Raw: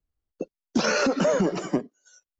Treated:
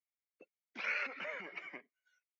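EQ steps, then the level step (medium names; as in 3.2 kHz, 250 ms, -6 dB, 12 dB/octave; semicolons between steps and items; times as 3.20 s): band-pass filter 2.2 kHz, Q 9.4; distance through air 170 m; +5.5 dB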